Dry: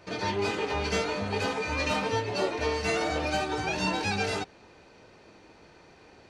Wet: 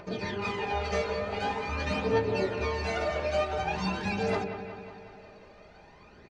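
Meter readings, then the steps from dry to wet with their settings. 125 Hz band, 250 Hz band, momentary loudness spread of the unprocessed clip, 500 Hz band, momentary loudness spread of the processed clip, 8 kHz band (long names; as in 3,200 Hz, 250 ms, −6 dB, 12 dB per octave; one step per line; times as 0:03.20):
0.0 dB, −1.5 dB, 2 LU, +0.5 dB, 14 LU, −9.0 dB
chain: high-shelf EQ 5,200 Hz +11.5 dB
mains-hum notches 50/100/150/200/250/300/350/400 Hz
comb filter 4.9 ms, depth 43%
upward compression, threshold −44 dBFS
phase shifter 0.46 Hz, delay 1.9 ms, feedback 56%
head-to-tape spacing loss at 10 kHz 26 dB
delay with a low-pass on its return 183 ms, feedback 63%, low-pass 2,900 Hz, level −9 dB
level −2 dB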